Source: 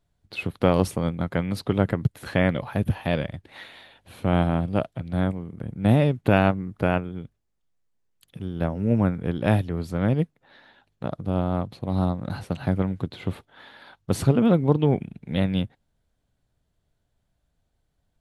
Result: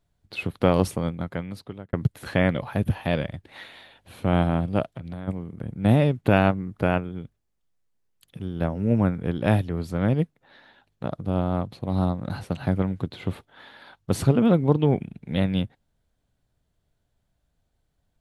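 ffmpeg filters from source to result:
-filter_complex "[0:a]asplit=3[a][b][c];[a]afade=t=out:st=4.85:d=0.02[d];[b]acompressor=threshold=-30dB:ratio=12:attack=3.2:release=140:knee=1:detection=peak,afade=t=in:st=4.85:d=0.02,afade=t=out:st=5.27:d=0.02[e];[c]afade=t=in:st=5.27:d=0.02[f];[d][e][f]amix=inputs=3:normalize=0,asplit=2[g][h];[g]atrim=end=1.93,asetpts=PTS-STARTPTS,afade=t=out:st=0.88:d=1.05[i];[h]atrim=start=1.93,asetpts=PTS-STARTPTS,afade=t=in:d=0.004:c=hsin[j];[i][j]concat=n=2:v=0:a=1"

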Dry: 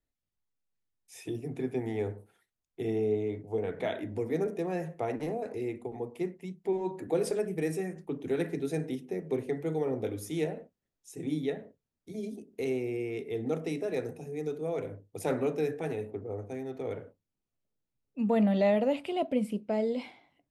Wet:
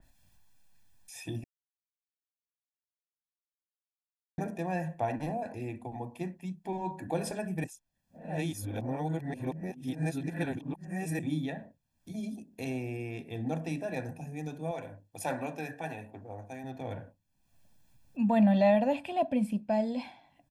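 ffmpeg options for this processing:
-filter_complex "[0:a]asettb=1/sr,asplit=3[a][b][c];[a]atrim=end=14.714[d];[b]atrim=start=14.71:end=16.64,asetpts=PTS-STARTPTS,afade=t=in:d=0.004:c=qsin,afade=t=out:st=1.926:d=0.004:c=qsin,lowshelf=f=260:g=-10.5[e];[c]atrim=start=16.636[f];[d][e]acrossfade=d=0.004:c1=hsin:c2=qsin[g];[g][f]acrossfade=d=0.004:c1=qsin:c2=hsin,asplit=5[h][i][j][k][l];[h]atrim=end=1.44,asetpts=PTS-STARTPTS,afade=t=out:st=1.436:d=0.004:c=hsin[m];[i]atrim=start=1.44:end=4.38,asetpts=PTS-STARTPTS,volume=0[n];[j]atrim=start=4.38:end=7.642,asetpts=PTS-STARTPTS,afade=t=in:d=0.004:c=hsin[o];[k]atrim=start=7.638:end=11.192,asetpts=PTS-STARTPTS,areverse[p];[l]atrim=start=11.188[q];[m][n][o]concat=n=3:v=0:a=1[r];[r][p]acrossfade=d=0.004:c1=hsin:c2=hsin[s];[s][q]acrossfade=d=0.004:c1=hsin:c2=hsin,aecho=1:1:1.2:0.82,acompressor=mode=upward:threshold=-46dB:ratio=2.5,adynamicequalizer=threshold=0.00251:dfrequency=2600:dqfactor=0.7:tfrequency=2600:tqfactor=0.7:attack=5:release=100:ratio=0.375:range=1.5:mode=cutabove:tftype=highshelf"

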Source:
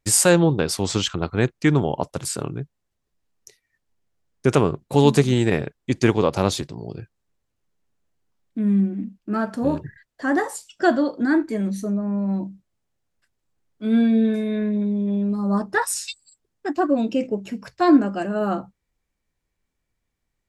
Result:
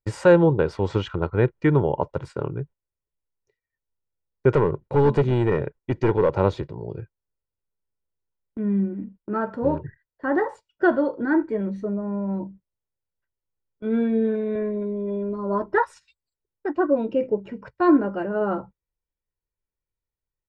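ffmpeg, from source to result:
-filter_complex "[0:a]asettb=1/sr,asplit=3[a][b][c];[a]atrim=end=4.554[d];[b]atrim=start=4.55:end=6.38,asetpts=PTS-STARTPTS,afade=t=in:d=0.004:c=qsin,afade=t=out:st=1.826:d=0.004:c=qsin,asoftclip=type=hard:threshold=-14.5dB[e];[c]atrim=start=6.376[f];[d][e]acrossfade=d=0.004:c1=hsin:c2=qsin[g];[g][f]acrossfade=d=0.004:c1=qsin:c2=hsin,asettb=1/sr,asplit=3[h][i][j];[h]atrim=end=14.554[k];[i]atrim=start=14.55:end=15.78,asetpts=PTS-STARTPTS,afade=t=in:d=0.004:c=qsin,afade=t=out:st=1.226:d=0.004:c=qsin,aecho=1:1:3:0.65,atrim=end_sample=54243[l];[j]atrim=start=15.776[m];[k][l]acrossfade=d=0.004:c1=hsin:c2=qsin[n];[n][m]acrossfade=d=0.004:c1=qsin:c2=hsin,lowpass=1.6k,agate=range=-14dB:threshold=-40dB:ratio=16:detection=peak,aecho=1:1:2.1:0.48"

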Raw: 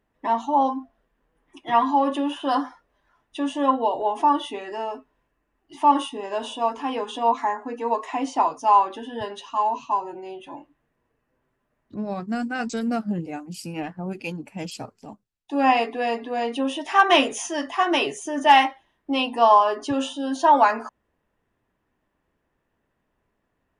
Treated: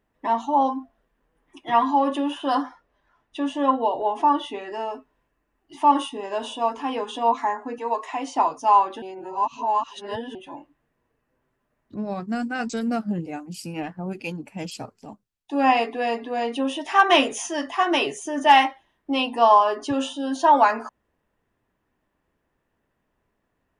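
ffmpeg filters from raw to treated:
-filter_complex "[0:a]asettb=1/sr,asplit=3[a][b][c];[a]atrim=end=2.624[d];[b]atrim=start=2.62:end=4.74,asetpts=PTS-STARTPTS,afade=t=in:d=0.004:c=qsin,afade=t=out:st=2.116:d=0.004:c=qsin,highshelf=f=8.7k:g=-10.5[e];[c]atrim=start=4.736[f];[d][e]acrossfade=d=0.004:c1=hsin:c2=qsin[g];[g][f]acrossfade=d=0.004:c1=qsin:c2=hsin,asettb=1/sr,asplit=3[h][i][j];[h]atrim=end=7.784[k];[i]atrim=start=7.78:end=8.36,asetpts=PTS-STARTPTS,afade=t=in:d=0.004:c=qsin,afade=t=out:st=0.576:d=0.004:c=qsin,highpass=f=440:p=1[l];[j]atrim=start=8.356[m];[k][l]acrossfade=d=0.004:c1=hsin:c2=qsin[n];[n][m]acrossfade=d=0.004:c1=qsin:c2=hsin,asplit=3[o][p][q];[o]atrim=end=9.022[r];[p]atrim=start=9.018:end=10.352,asetpts=PTS-STARTPTS,areverse[s];[q]atrim=start=10.348[t];[r][s]acrossfade=d=0.004:c1=hsin:c2=hsin[u];[u][t]acrossfade=d=0.004:c1=hsin:c2=hsin"

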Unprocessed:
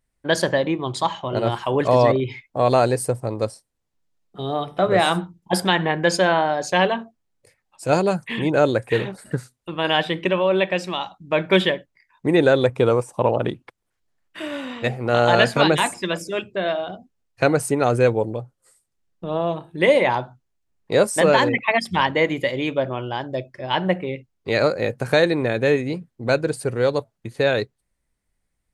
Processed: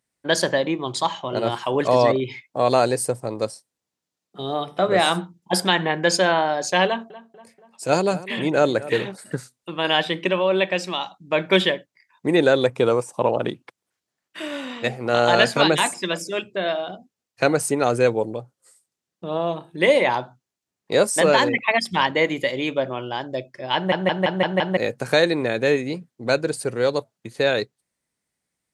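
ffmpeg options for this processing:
-filter_complex "[0:a]asettb=1/sr,asplit=3[a][b][c];[a]atrim=end=6.864[d];[b]atrim=start=6.86:end=8.98,asetpts=PTS-STARTPTS,afade=t=in:d=0.004:c=qsin,afade=t=out:st=2.116:d=0.004:c=qsin,asplit=2[e][f];[f]adelay=240,lowpass=f=2.1k:p=1,volume=-16.5dB,asplit=2[g][h];[h]adelay=240,lowpass=f=2.1k:p=1,volume=0.55,asplit=2[i][j];[j]adelay=240,lowpass=f=2.1k:p=1,volume=0.55,asplit=2[k][l];[l]adelay=240,lowpass=f=2.1k:p=1,volume=0.55,asplit=2[m][n];[n]adelay=240,lowpass=f=2.1k:p=1,volume=0.55[o];[e][g][i][k][m][o]amix=inputs=6:normalize=0,atrim=end_sample=93492[p];[c]atrim=start=8.976[q];[d][p]acrossfade=d=0.004:c1=hsin:c2=qsin[r];[r][q]acrossfade=d=0.004:c1=qsin:c2=hsin,asplit=7[s][t][u][v][w][x][y];[s]atrim=end=23.922[z];[t]atrim=start=23.748:end=23.922[aa];[u]atrim=start=23.748:end=23.922[ab];[v]atrim=start=23.748:end=23.922[ac];[w]atrim=start=23.748:end=23.922[ad];[x]atrim=start=23.748:end=23.922[ae];[y]atrim=start=24.768[af];[z][aa]acrossfade=d=0.004:c1=hsin:c2=hsin[ag];[ag][ab]acrossfade=d=0.004:c1=hsin:c2=hsin[ah];[ah][ac]acrossfade=d=0.004:c1=hsin:c2=hsin[ai];[ai][ad]acrossfade=d=0.004:c1=hsin:c2=hsin[aj];[aj][ae]acrossfade=d=0.004:c1=hsin:c2=hsin[ak];[ak][af]acrossfade=d=0.004:c1=hsin:c2=hsin,highpass=150,equalizer=f=6.1k:t=o:w=1.8:g=5,volume=-1dB"

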